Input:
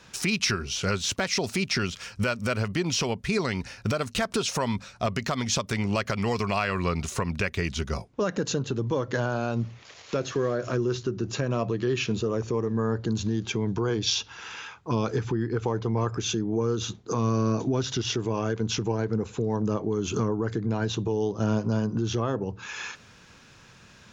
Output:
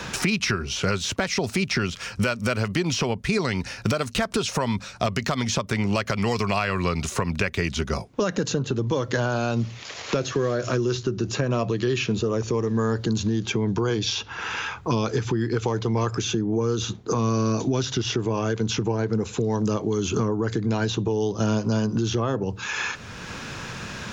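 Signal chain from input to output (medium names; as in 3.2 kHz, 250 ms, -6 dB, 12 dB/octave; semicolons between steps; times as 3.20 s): three bands compressed up and down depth 70%; trim +2.5 dB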